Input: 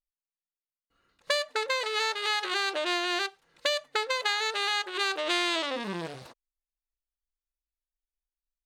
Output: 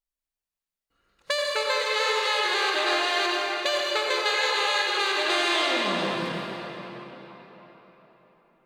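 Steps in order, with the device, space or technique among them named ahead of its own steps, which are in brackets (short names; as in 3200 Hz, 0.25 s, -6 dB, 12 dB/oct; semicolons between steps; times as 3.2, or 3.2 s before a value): cathedral (reverb RT60 4.3 s, pre-delay 78 ms, DRR -4 dB)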